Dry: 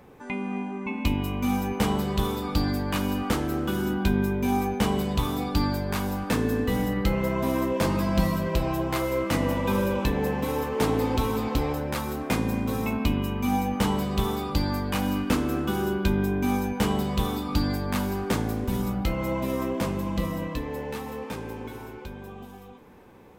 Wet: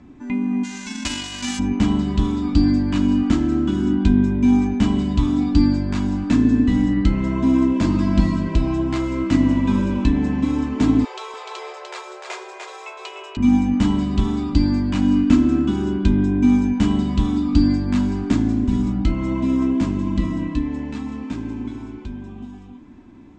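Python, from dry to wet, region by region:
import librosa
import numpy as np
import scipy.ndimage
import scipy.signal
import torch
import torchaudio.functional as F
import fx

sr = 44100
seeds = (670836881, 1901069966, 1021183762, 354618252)

y = fx.envelope_flatten(x, sr, power=0.1, at=(0.63, 1.58), fade=0.02)
y = fx.peak_eq(y, sr, hz=280.0, db=-7.5, octaves=0.33, at=(0.63, 1.58), fade=0.02)
y = fx.chain(y, sr, fx.brickwall_highpass(low_hz=370.0),
    fx.echo_single(ms=298, db=-4.5), at=(11.04, 13.37))
y = scipy.signal.sosfilt(scipy.signal.ellip(4, 1.0, 80, 7500.0, 'lowpass', fs=sr, output='sos'), y)
y = fx.low_shelf_res(y, sr, hz=350.0, db=8.0, q=3.0)
y = y + 0.46 * np.pad(y, (int(3.0 * sr / 1000.0), 0))[:len(y)]
y = y * 10.0 ** (-1.0 / 20.0)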